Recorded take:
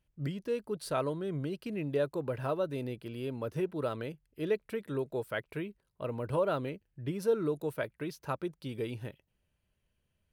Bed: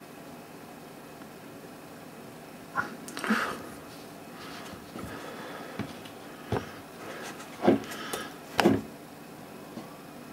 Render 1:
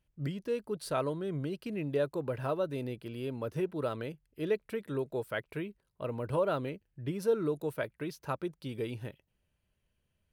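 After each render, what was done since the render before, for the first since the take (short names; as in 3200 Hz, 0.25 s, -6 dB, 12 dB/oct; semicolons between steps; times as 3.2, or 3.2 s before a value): nothing audible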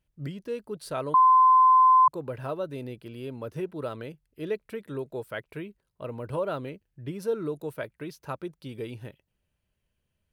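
1.14–2.08 bleep 1030 Hz -14 dBFS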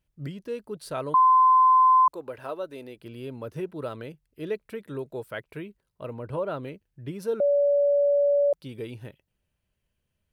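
2.01–3 bell 140 Hz -14.5 dB 1.3 oct; 6.13–6.63 high shelf 3800 Hz -8 dB; 7.4–8.53 bleep 572 Hz -18 dBFS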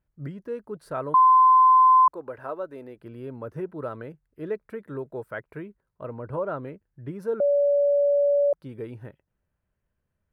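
resonant high shelf 2200 Hz -10.5 dB, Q 1.5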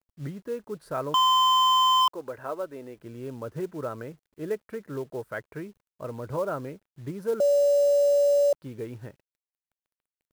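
companded quantiser 6-bit; wavefolder -16 dBFS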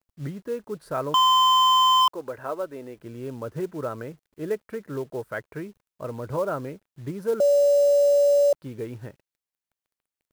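gain +2.5 dB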